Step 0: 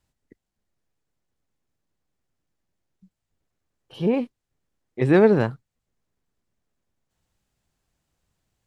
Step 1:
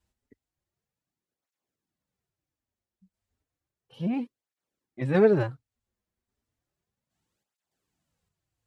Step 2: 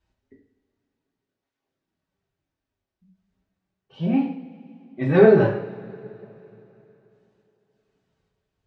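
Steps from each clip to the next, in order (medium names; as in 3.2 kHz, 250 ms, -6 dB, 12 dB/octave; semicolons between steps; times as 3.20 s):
random-step tremolo 3.5 Hz; cancelling through-zero flanger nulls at 0.33 Hz, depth 7.5 ms
distance through air 140 m; reverberation, pre-delay 3 ms, DRR -3 dB; trim +3 dB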